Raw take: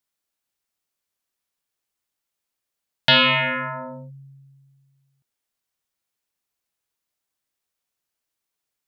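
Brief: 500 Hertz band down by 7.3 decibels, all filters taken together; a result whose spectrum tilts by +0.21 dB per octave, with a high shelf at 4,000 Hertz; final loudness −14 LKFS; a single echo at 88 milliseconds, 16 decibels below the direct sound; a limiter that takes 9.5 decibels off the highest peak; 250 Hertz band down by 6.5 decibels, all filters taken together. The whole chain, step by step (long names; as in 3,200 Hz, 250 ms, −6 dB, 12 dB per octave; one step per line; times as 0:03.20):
parametric band 250 Hz −5.5 dB
parametric band 500 Hz −8.5 dB
high-shelf EQ 4,000 Hz +6.5 dB
brickwall limiter −15 dBFS
single-tap delay 88 ms −16 dB
level +8.5 dB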